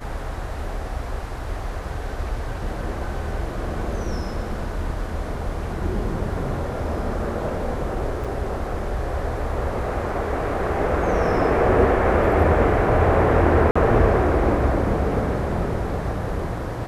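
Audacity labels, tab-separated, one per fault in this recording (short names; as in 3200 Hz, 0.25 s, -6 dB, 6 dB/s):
8.240000	8.250000	gap 6 ms
13.710000	13.760000	gap 45 ms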